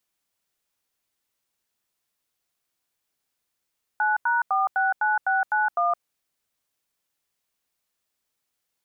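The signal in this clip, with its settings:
touch tones "9#469691", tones 166 ms, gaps 87 ms, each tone −22 dBFS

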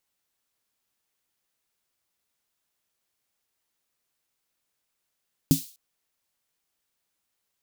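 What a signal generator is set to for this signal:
synth snare length 0.25 s, tones 160 Hz, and 270 Hz, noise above 3,500 Hz, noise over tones −11.5 dB, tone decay 0.14 s, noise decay 0.42 s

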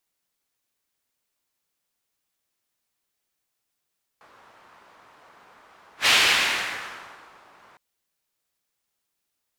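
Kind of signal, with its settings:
pass-by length 3.56 s, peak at 0:01.86, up 0.11 s, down 1.49 s, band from 1,100 Hz, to 2,800 Hz, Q 1.4, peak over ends 36 dB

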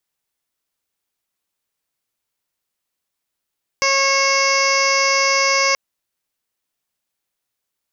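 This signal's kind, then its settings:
steady harmonic partials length 1.93 s, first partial 546 Hz, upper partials 2/−5.5/3.5/−5/−17/−19/−11.5/−2/−2.5/−2/−11 dB, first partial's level −22 dB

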